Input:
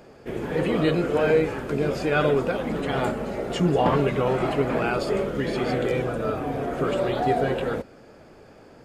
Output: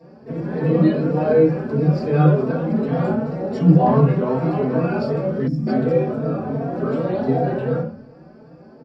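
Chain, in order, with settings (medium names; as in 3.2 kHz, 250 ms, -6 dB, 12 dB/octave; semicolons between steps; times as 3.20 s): reverberation RT60 0.45 s, pre-delay 3 ms, DRR -7 dB; time-frequency box 5.47–5.67 s, 310–4800 Hz -22 dB; endless flanger 3.9 ms +2.7 Hz; trim -13 dB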